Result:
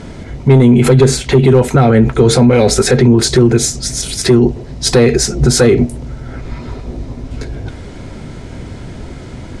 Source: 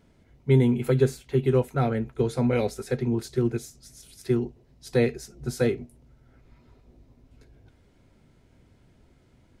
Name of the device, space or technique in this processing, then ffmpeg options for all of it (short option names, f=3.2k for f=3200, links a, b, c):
mastering chain: -af "lowpass=f=9.3k:w=0.5412,lowpass=f=9.3k:w=1.3066,equalizer=f=2.7k:t=o:w=0.38:g=-2.5,acompressor=threshold=-29dB:ratio=1.5,asoftclip=type=tanh:threshold=-17.5dB,asoftclip=type=hard:threshold=-20.5dB,alimiter=level_in=31.5dB:limit=-1dB:release=50:level=0:latency=1,volume=-1dB"